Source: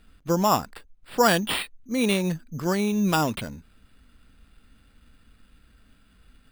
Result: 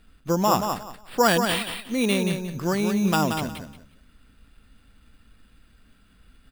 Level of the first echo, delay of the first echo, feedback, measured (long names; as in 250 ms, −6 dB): −6.5 dB, 179 ms, 22%